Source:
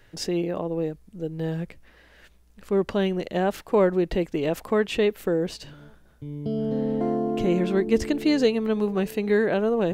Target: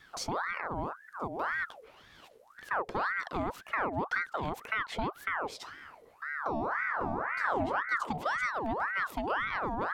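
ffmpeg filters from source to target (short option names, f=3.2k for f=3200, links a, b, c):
-filter_complex "[0:a]acrossover=split=200[a][b];[b]acompressor=threshold=-33dB:ratio=4[c];[a][c]amix=inputs=2:normalize=0,aeval=exprs='val(0)*sin(2*PI*1100*n/s+1100*0.6/1.9*sin(2*PI*1.9*n/s))':c=same"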